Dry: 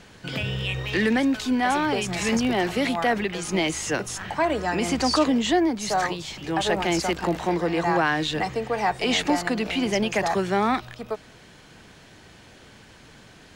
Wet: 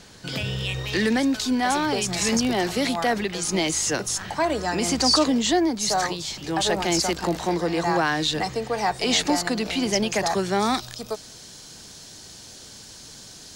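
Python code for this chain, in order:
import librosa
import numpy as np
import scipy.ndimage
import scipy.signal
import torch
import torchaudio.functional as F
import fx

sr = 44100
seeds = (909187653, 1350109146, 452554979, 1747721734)

y = fx.high_shelf_res(x, sr, hz=3500.0, db=fx.steps((0.0, 6.0), (10.59, 13.5)), q=1.5)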